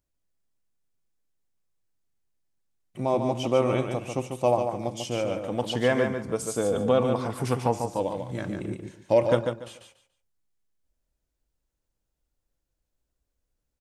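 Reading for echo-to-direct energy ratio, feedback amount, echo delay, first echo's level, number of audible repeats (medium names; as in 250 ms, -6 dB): -6.0 dB, 23%, 144 ms, -6.0 dB, 3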